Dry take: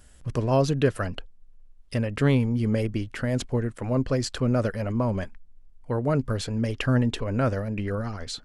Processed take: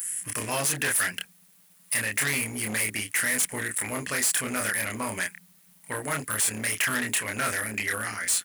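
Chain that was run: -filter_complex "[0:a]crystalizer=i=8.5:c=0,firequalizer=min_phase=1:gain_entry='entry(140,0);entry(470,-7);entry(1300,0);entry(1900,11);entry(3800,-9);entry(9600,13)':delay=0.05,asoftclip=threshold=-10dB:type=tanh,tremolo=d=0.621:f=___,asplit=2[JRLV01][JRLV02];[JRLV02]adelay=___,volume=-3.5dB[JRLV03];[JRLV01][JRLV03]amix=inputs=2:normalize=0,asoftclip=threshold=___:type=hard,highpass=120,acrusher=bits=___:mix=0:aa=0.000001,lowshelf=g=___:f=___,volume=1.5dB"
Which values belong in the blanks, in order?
180, 28, -23dB, 9, -10.5, 270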